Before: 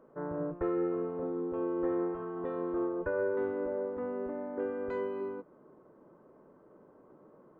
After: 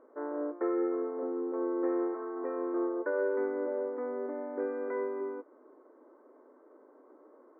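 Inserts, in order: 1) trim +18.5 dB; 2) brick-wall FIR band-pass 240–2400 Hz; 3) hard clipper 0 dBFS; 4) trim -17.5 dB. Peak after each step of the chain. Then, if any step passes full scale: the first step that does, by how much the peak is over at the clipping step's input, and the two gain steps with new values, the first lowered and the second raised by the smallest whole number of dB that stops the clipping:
-2.5 dBFS, -2.5 dBFS, -2.5 dBFS, -20.0 dBFS; nothing clips

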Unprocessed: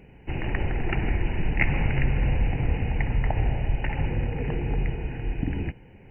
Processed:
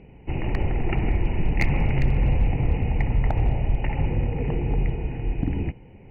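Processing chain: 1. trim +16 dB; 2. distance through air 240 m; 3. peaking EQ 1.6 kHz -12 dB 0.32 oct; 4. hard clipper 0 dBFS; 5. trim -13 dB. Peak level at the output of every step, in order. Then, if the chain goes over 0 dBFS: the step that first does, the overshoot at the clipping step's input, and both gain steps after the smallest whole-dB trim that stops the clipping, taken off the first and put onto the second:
+8.5 dBFS, +6.5 dBFS, +6.0 dBFS, 0.0 dBFS, -13.0 dBFS; step 1, 6.0 dB; step 1 +10 dB, step 5 -7 dB

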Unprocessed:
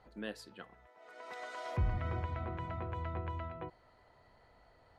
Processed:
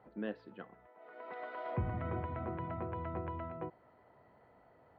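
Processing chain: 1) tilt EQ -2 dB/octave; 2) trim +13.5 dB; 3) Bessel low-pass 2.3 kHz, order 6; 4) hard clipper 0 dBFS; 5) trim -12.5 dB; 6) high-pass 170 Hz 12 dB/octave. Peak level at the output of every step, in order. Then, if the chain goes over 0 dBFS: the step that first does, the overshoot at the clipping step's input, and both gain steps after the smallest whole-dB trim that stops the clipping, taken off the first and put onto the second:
-16.5 dBFS, -3.0 dBFS, -3.0 dBFS, -3.0 dBFS, -15.5 dBFS, -23.5 dBFS; nothing clips

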